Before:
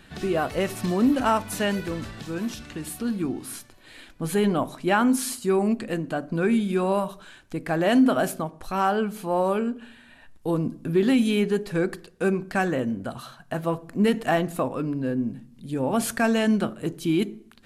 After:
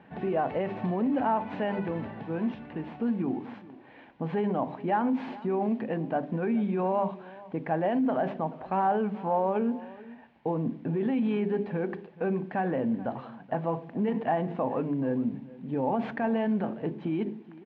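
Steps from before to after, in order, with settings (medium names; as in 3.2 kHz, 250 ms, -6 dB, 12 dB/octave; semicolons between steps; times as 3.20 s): CVSD coder 64 kbps; treble shelf 2 kHz -12 dB; hum notches 50/100/150/200/250/300/350/400 Hz; peak limiter -22.5 dBFS, peak gain reduction 12 dB; word length cut 10-bit, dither triangular; cabinet simulation 160–2800 Hz, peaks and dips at 340 Hz -4 dB, 850 Hz +7 dB, 1.3 kHz -7 dB; on a send: delay 430 ms -19 dB; on the sum: tape noise reduction on one side only decoder only; trim +3 dB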